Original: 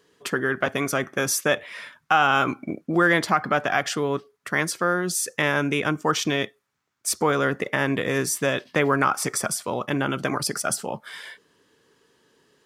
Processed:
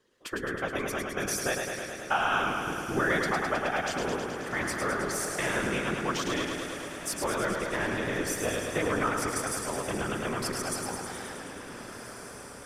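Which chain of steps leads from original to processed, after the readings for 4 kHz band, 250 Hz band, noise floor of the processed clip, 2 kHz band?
−6.0 dB, −6.5 dB, −44 dBFS, −6.0 dB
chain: feedback delay with all-pass diffusion 1,561 ms, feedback 50%, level −11.5 dB
random phases in short frames
feedback echo with a swinging delay time 106 ms, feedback 77%, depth 52 cents, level −5 dB
level −9 dB

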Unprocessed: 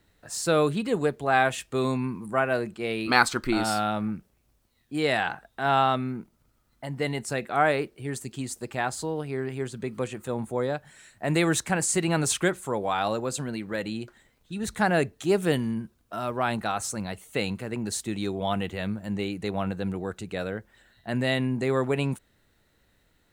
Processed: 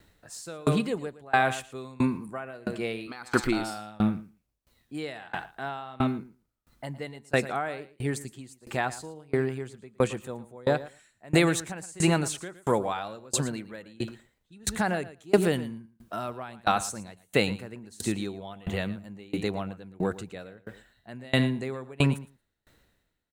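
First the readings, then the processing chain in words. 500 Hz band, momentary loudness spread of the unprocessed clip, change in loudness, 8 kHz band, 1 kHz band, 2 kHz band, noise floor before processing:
−2.5 dB, 11 LU, −2.0 dB, −4.0 dB, −4.5 dB, −3.5 dB, −67 dBFS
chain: repeating echo 114 ms, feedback 19%, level −12 dB
brickwall limiter −14 dBFS, peak gain reduction 10 dB
tremolo with a ramp in dB decaying 1.5 Hz, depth 29 dB
level +7 dB

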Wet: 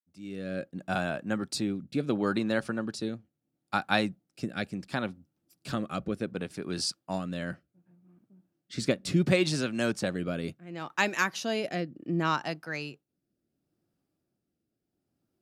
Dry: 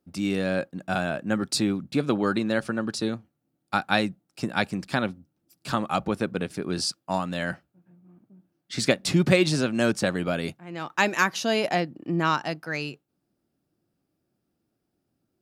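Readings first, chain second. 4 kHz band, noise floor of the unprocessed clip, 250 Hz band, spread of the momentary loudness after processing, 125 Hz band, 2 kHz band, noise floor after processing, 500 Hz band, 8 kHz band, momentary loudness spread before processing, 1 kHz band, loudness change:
−5.5 dB, −78 dBFS, −4.5 dB, 11 LU, −4.5 dB, −5.0 dB, −83 dBFS, −5.5 dB, −5.5 dB, 9 LU, −6.0 dB, −5.0 dB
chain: fade in at the beginning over 0.77 s
rotating-speaker cabinet horn 0.7 Hz
level −3 dB

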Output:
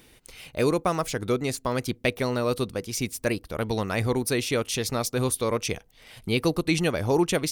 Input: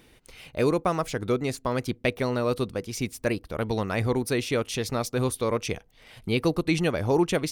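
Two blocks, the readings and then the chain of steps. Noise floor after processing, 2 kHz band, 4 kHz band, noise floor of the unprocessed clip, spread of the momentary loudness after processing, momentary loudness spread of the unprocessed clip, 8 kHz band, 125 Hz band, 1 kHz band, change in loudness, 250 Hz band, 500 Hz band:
−56 dBFS, +1.5 dB, +3.0 dB, −57 dBFS, 6 LU, 6 LU, +5.5 dB, 0.0 dB, +0.5 dB, +0.5 dB, 0.0 dB, 0.0 dB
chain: high-shelf EQ 4,300 Hz +7 dB

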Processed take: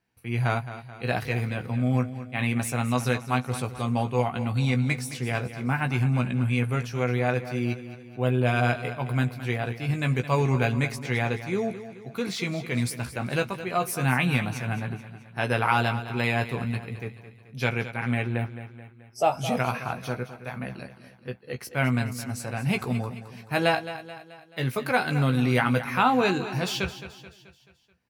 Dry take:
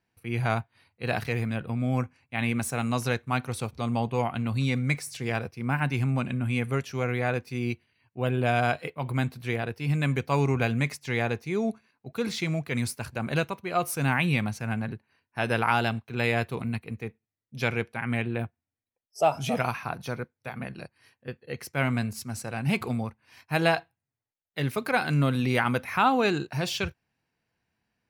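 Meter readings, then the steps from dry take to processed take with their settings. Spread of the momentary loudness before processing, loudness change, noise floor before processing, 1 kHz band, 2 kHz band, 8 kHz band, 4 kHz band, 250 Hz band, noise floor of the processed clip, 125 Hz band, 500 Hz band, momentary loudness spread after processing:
12 LU, +1.5 dB, below −85 dBFS, +1.0 dB, +1.0 dB, +1.0 dB, +1.0 dB, +1.5 dB, −52 dBFS, +2.5 dB, +1.0 dB, 13 LU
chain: double-tracking delay 16 ms −6.5 dB
repeating echo 216 ms, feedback 50%, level −13 dB

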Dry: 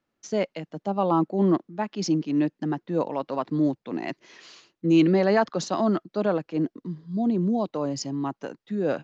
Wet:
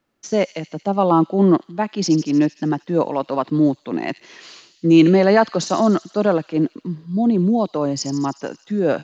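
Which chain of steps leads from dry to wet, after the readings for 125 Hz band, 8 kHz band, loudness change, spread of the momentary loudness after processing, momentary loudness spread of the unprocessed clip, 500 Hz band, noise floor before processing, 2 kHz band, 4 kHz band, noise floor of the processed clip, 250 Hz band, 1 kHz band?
+7.0 dB, can't be measured, +7.0 dB, 11 LU, 11 LU, +7.0 dB, −81 dBFS, +7.0 dB, +7.5 dB, −58 dBFS, +7.0 dB, +7.0 dB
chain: delay with a high-pass on its return 77 ms, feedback 70%, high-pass 4,000 Hz, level −9 dB
level +7 dB

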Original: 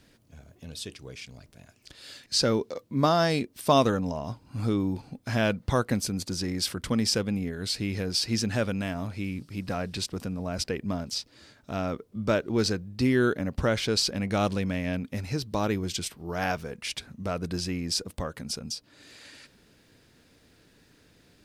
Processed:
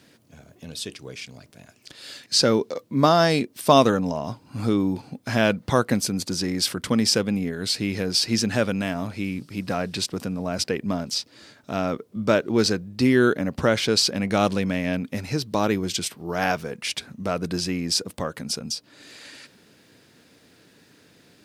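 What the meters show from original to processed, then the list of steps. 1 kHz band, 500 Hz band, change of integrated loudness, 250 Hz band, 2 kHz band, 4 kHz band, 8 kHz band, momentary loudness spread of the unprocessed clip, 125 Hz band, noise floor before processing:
+5.5 dB, +5.5 dB, +5.0 dB, +5.0 dB, +5.5 dB, +5.5 dB, +5.5 dB, 13 LU, +2.0 dB, −62 dBFS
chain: high-pass filter 130 Hz 12 dB per octave
level +5.5 dB

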